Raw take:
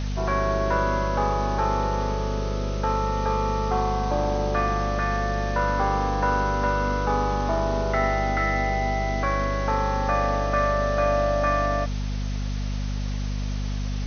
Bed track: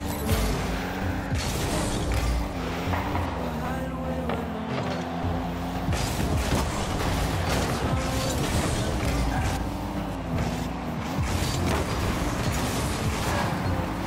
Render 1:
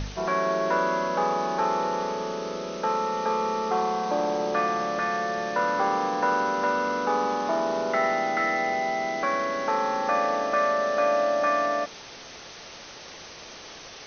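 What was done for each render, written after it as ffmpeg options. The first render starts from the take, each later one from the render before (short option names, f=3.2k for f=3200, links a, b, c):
-af "bandreject=f=50:t=h:w=4,bandreject=f=100:t=h:w=4,bandreject=f=150:t=h:w=4,bandreject=f=200:t=h:w=4,bandreject=f=250:t=h:w=4"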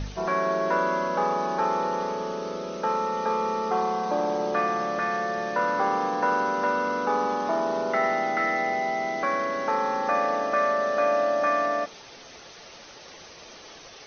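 -af "afftdn=nr=6:nf=-44"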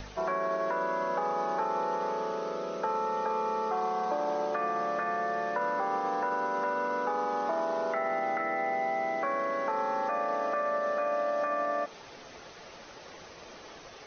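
-filter_complex "[0:a]alimiter=limit=-17.5dB:level=0:latency=1,acrossover=split=370|820|2200[a][b][c][d];[a]acompressor=threshold=-46dB:ratio=4[e];[b]acompressor=threshold=-32dB:ratio=4[f];[c]acompressor=threshold=-34dB:ratio=4[g];[d]acompressor=threshold=-55dB:ratio=4[h];[e][f][g][h]amix=inputs=4:normalize=0"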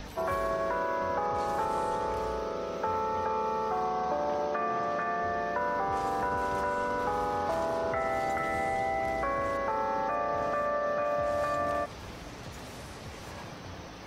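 -filter_complex "[1:a]volume=-18dB[a];[0:a][a]amix=inputs=2:normalize=0"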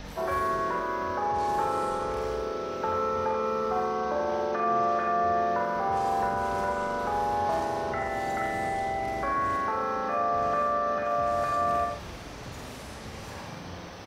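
-filter_complex "[0:a]asplit=2[a][b];[b]adelay=46,volume=-4dB[c];[a][c]amix=inputs=2:normalize=0,aecho=1:1:86:0.501"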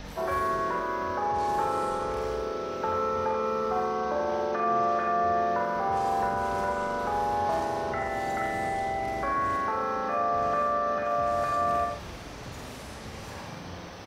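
-af anull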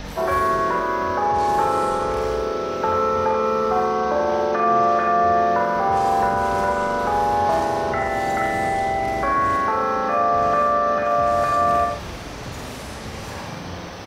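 -af "volume=8dB"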